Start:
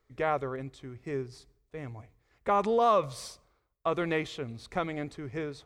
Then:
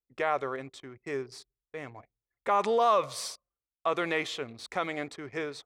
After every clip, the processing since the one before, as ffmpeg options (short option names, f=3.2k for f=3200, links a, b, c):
-filter_complex "[0:a]highpass=f=680:p=1,anlmdn=0.000251,asplit=2[a][b];[b]alimiter=level_in=2dB:limit=-24dB:level=0:latency=1:release=24,volume=-2dB,volume=2dB[c];[a][c]amix=inputs=2:normalize=0,volume=-1dB"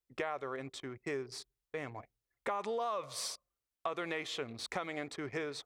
-af "acompressor=threshold=-37dB:ratio=5,volume=2dB"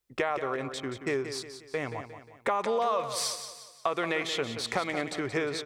-af "aecho=1:1:178|356|534|712|890:0.316|0.139|0.0612|0.0269|0.0119,volume=8dB"